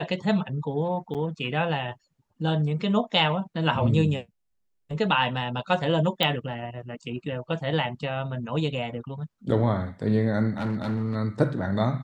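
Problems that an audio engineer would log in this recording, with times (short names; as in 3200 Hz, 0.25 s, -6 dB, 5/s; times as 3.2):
1.14–1.15 gap 7.5 ms
6.23 pop -9 dBFS
10.57–11.16 clipped -23.5 dBFS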